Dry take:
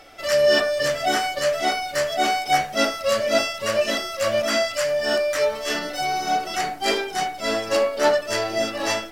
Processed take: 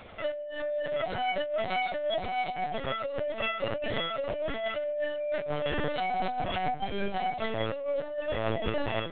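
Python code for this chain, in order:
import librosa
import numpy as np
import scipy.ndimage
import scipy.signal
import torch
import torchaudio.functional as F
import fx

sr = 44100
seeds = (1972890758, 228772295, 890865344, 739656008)

y = scipy.signal.sosfilt(scipy.signal.butter(4, 71.0, 'highpass', fs=sr, output='sos'), x)
y = fx.low_shelf(y, sr, hz=360.0, db=11.0)
y = fx.over_compress(y, sr, threshold_db=-24.0, ratio=-1.0)
y = fx.lpc_vocoder(y, sr, seeds[0], excitation='pitch_kept', order=10)
y = y * 10.0 ** (-7.0 / 20.0)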